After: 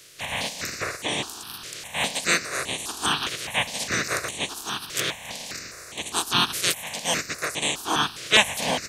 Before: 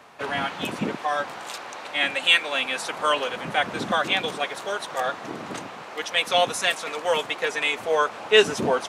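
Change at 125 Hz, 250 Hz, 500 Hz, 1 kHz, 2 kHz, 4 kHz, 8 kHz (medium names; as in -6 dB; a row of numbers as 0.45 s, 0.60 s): +2.0 dB, -1.5 dB, -9.0 dB, -3.5 dB, -1.5 dB, +0.5 dB, +9.0 dB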